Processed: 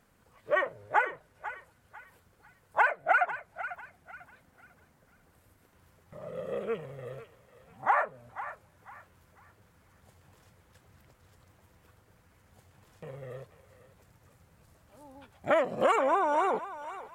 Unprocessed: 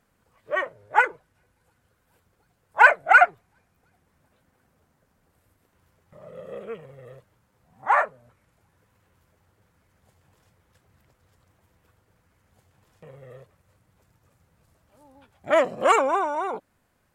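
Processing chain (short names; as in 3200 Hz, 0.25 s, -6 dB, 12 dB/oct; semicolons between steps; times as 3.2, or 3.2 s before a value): dynamic EQ 6100 Hz, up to -6 dB, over -41 dBFS, Q 0.89; compressor 12:1, threshold -24 dBFS, peak gain reduction 16.5 dB; on a send: thinning echo 0.496 s, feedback 37%, high-pass 890 Hz, level -11 dB; on the sum: gain +2.5 dB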